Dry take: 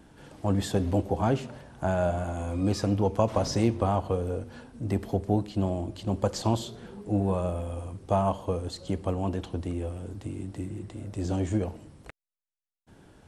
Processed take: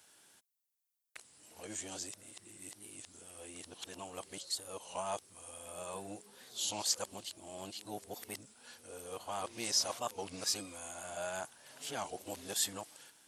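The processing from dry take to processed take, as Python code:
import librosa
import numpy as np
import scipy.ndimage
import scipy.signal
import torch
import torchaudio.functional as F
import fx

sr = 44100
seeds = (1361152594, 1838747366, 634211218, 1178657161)

y = np.flip(x).copy()
y = np.diff(y, prepend=0.0)
y = fx.record_warp(y, sr, rpm=33.33, depth_cents=160.0)
y = y * librosa.db_to_amplitude(7.0)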